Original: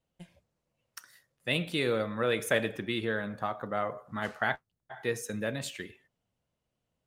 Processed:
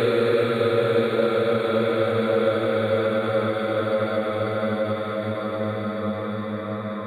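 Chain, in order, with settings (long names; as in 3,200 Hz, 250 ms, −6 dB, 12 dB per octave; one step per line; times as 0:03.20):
extreme stretch with random phases 36×, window 0.25 s, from 0:01.91
every ending faded ahead of time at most 130 dB per second
level +7.5 dB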